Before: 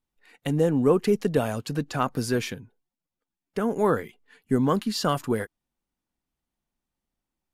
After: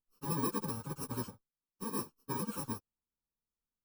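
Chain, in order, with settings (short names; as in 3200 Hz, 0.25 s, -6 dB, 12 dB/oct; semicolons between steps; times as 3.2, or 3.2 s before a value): FFT order left unsorted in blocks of 64 samples; plain phase-vocoder stretch 0.51×; resonant high shelf 1600 Hz -6.5 dB, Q 3; gain -7.5 dB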